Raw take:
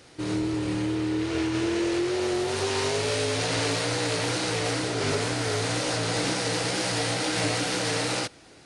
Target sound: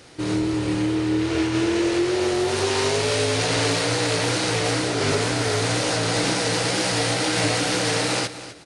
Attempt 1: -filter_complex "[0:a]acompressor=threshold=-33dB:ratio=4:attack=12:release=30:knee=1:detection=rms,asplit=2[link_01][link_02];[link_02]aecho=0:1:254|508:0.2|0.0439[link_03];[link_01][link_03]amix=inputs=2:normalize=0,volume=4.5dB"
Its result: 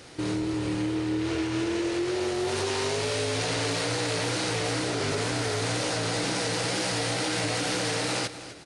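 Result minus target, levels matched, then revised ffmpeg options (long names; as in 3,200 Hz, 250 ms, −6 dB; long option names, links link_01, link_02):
downward compressor: peak gain reduction +8 dB
-filter_complex "[0:a]asplit=2[link_01][link_02];[link_02]aecho=0:1:254|508:0.2|0.0439[link_03];[link_01][link_03]amix=inputs=2:normalize=0,volume=4.5dB"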